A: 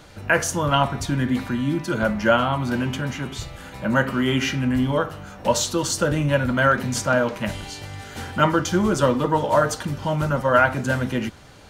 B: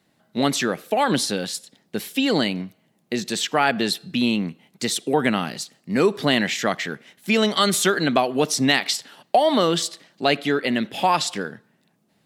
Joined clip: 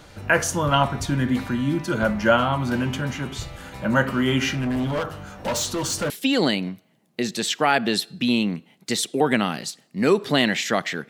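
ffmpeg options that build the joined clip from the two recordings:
-filter_complex "[0:a]asettb=1/sr,asplit=3[s0][s1][s2];[s0]atrim=end=4.524[s3];[s1]atrim=start=4.52:end=6.1,asetpts=PTS-STARTPTS,afade=t=in:d=0.004:c=qsin,afade=t=out:st=1.576:d=0.004:c=qsin,volume=11.9,asoftclip=hard,volume=0.0841[s4];[s2]atrim=start=6.096[s5];[s3][s4]acrossfade=d=0.004:c1=hsin:c2=qsin[s6];[s6][s5]acrossfade=d=0.004:c1=qsin:c2=hsin,apad=whole_dur=11.09,atrim=end=11.09,atrim=end=6.102[s7];[1:a]atrim=start=2.028:end=7.02[s8];[s7][s8]acrossfade=d=0.004:c1=hsin:c2=hsin"

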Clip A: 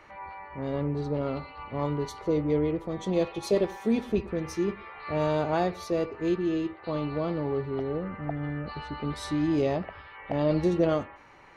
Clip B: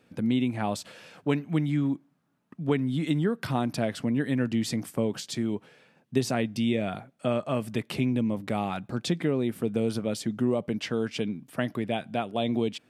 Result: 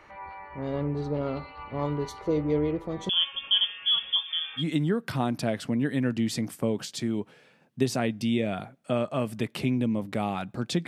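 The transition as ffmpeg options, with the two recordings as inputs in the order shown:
-filter_complex "[0:a]asettb=1/sr,asplit=3[s0][s1][s2];[s0]atrim=end=3.094[s3];[s1]atrim=start=3.09:end=4.64,asetpts=PTS-STARTPTS,afade=t=in:d=0.004:c=qsin,afade=t=out:st=1.546:d=0.004:c=qsin,lowpass=f=3100:t=q:w=0.5098,lowpass=f=3100:t=q:w=0.6013,lowpass=f=3100:t=q:w=0.9,lowpass=f=3100:t=q:w=2.563,afreqshift=-3600[s4];[s2]atrim=start=4.636[s5];[s3][s4]acrossfade=d=0.004:c1=hsin:c2=qsin[s6];[s6][s5]acrossfade=d=0.004:c1=qsin:c2=hsin,apad=whole_dur=10.87,atrim=end=10.87,atrim=end=4.64,asetpts=PTS-STARTPTS[s7];[1:a]atrim=start=2.91:end=9.22,asetpts=PTS-STARTPTS[s8];[s7][s8]acrossfade=d=0.08:c1=tri:c2=tri"

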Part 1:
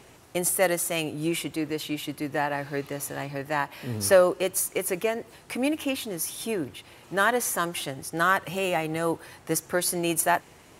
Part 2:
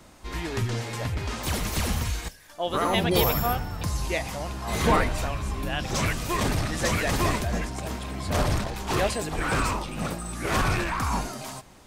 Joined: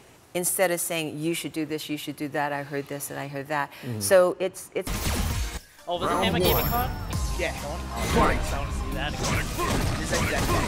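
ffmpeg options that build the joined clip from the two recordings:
-filter_complex "[0:a]asettb=1/sr,asplit=3[s0][s1][s2];[s0]atrim=end=4.324[s3];[s1]atrim=start=4.32:end=4.87,asetpts=PTS-STARTPTS,afade=t=in:d=0.004:c=qsin,afade=t=out:st=0.546:d=0.004:c=qsin,aemphasis=mode=reproduction:type=75kf[s4];[s2]atrim=start=4.866[s5];[s3][s4]acrossfade=d=0.004:c1=hsin:c2=qsin[s6];[s6][s5]acrossfade=d=0.004:c1=qsin:c2=hsin,apad=whole_dur=10.67,atrim=end=10.67,atrim=end=4.872[s7];[1:a]atrim=start=1.578:end=7.38[s8];[s7][s8]acrossfade=d=0.004:c1=hsin:c2=hsin"

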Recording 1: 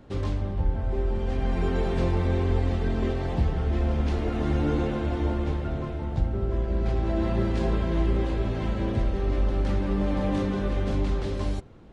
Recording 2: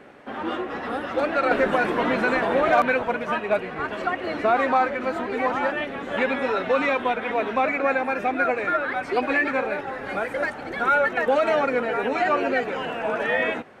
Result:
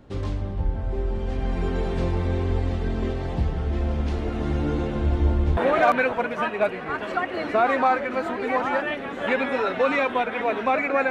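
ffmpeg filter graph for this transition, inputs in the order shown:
-filter_complex "[0:a]asettb=1/sr,asplit=3[s0][s1][s2];[s0]atrim=end=4.954[s3];[s1]atrim=start=4.95:end=5.57,asetpts=PTS-STARTPTS,afade=t=in:d=0.004:c=qsin,afade=t=out:st=0.616:d=0.004:c=qsin,lowshelf=f=100:g=10.5[s4];[s2]atrim=start=5.566[s5];[s3][s4]acrossfade=d=0.004:c1=hsin:c2=qsin[s6];[s6][s5]acrossfade=d=0.004:c1=qsin:c2=hsin,apad=whole_dur=11.1,atrim=end=11.1,atrim=end=5.572[s7];[1:a]atrim=start=2.468:end=8[s8];[s7][s8]acrossfade=d=0.004:c1=hsin:c2=hsin"

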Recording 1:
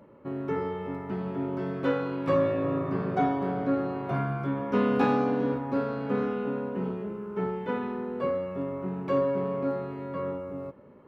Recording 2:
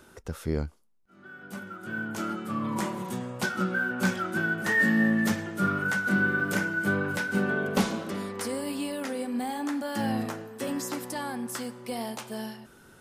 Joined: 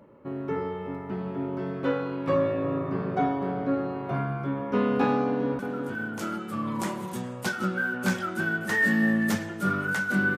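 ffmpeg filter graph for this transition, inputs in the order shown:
-filter_complex "[0:a]apad=whole_dur=10.37,atrim=end=10.37,atrim=end=5.592[s0];[1:a]atrim=start=1.558:end=6.34[s1];[s0][s1]acrossfade=d=0.004:c1=hsin:c2=hsin,asplit=2[s2][s3];[s3]afade=t=in:st=5.26:d=0.01,afade=t=out:st=5.59:d=0.01,aecho=0:1:360|720|1080:0.530884|0.132721|0.0331803[s4];[s2][s4]amix=inputs=2:normalize=0"

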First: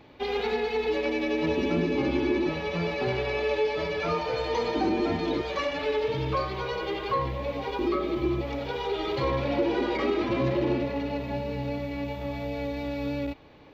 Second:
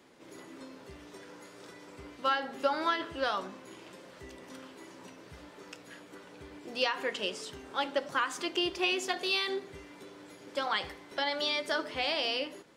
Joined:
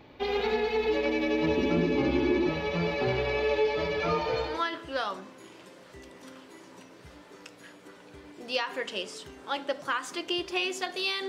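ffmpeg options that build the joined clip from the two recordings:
-filter_complex "[0:a]apad=whole_dur=11.28,atrim=end=11.28,atrim=end=4.64,asetpts=PTS-STARTPTS[s0];[1:a]atrim=start=2.65:end=9.55,asetpts=PTS-STARTPTS[s1];[s0][s1]acrossfade=d=0.26:c1=tri:c2=tri"

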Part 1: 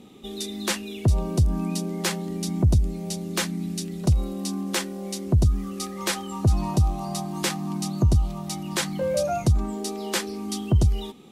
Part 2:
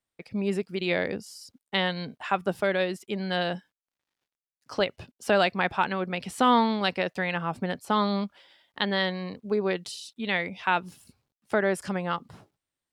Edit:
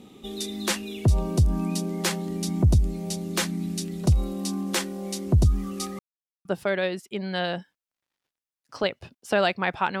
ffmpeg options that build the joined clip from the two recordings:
-filter_complex "[0:a]apad=whole_dur=10,atrim=end=10,asplit=2[s0][s1];[s0]atrim=end=5.99,asetpts=PTS-STARTPTS,afade=t=out:st=5.986:d=0.004:c=hsin[s2];[s1]atrim=start=5.99:end=6.45,asetpts=PTS-STARTPTS,volume=0[s3];[1:a]atrim=start=2.42:end=5.97,asetpts=PTS-STARTPTS,afade=t=in:d=0.004:c=hsin[s4];[s2][s3][s4]concat=n=3:v=0:a=1"

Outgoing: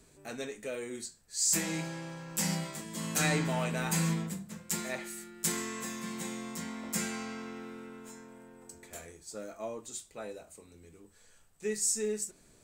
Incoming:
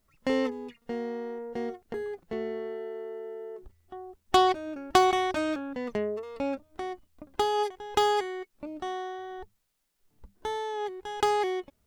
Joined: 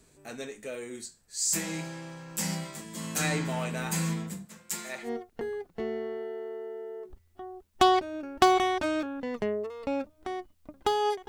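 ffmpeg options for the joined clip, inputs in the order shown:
-filter_complex "[0:a]asettb=1/sr,asplit=3[s0][s1][s2];[s0]atrim=end=4.454[s3];[s1]atrim=start=4.45:end=5.1,asetpts=PTS-STARTPTS,afade=t=in:d=0.004:c=qsin,afade=t=out:st=0.646:d=0.004:c=qsin,lowshelf=f=320:g=-11[s4];[s2]atrim=start=5.096[s5];[s3][s4]acrossfade=d=0.004:c1=hsin:c2=qsin[s6];[s6][s5]acrossfade=d=0.004:c1=qsin:c2=hsin,apad=whole_dur=11.28,atrim=end=11.28,atrim=end=5.1,asetpts=PTS-STARTPTS[s7];[1:a]atrim=start=1.55:end=7.81,asetpts=PTS-STARTPTS[s8];[s7][s8]acrossfade=d=0.08:c1=tri:c2=tri"

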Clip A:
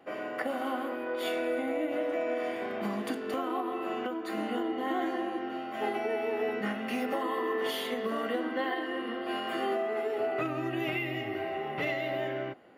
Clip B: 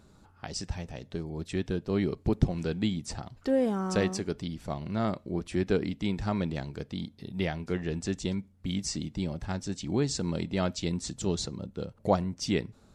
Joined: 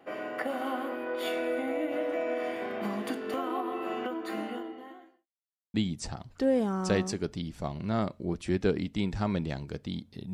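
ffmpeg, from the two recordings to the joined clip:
-filter_complex "[0:a]apad=whole_dur=10.33,atrim=end=10.33,asplit=2[s0][s1];[s0]atrim=end=5.28,asetpts=PTS-STARTPTS,afade=t=out:st=4.32:d=0.96:c=qua[s2];[s1]atrim=start=5.28:end=5.74,asetpts=PTS-STARTPTS,volume=0[s3];[1:a]atrim=start=2.8:end=7.39,asetpts=PTS-STARTPTS,afade=t=in:d=0.004:c=hsin[s4];[s2][s3][s4]concat=n=3:v=0:a=1"

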